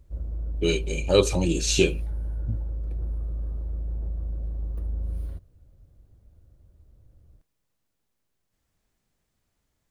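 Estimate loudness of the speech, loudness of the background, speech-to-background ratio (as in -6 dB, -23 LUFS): -24.0 LUFS, -33.0 LUFS, 9.0 dB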